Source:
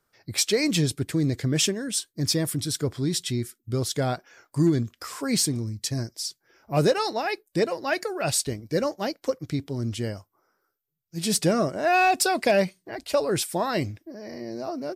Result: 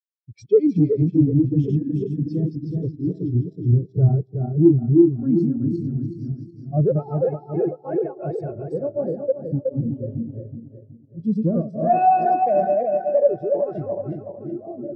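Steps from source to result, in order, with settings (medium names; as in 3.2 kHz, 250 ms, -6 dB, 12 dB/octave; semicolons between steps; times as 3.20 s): backward echo that repeats 186 ms, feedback 79%, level -1 dB; low-pass 7 kHz 12 dB/octave; treble shelf 2.3 kHz -8 dB; band-stop 1 kHz, Q 26; waveshaping leveller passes 3; transient shaper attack +1 dB, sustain -11 dB; reverberation RT60 2.5 s, pre-delay 92 ms, DRR 15.5 dB; spectral contrast expander 2.5:1; trim +1.5 dB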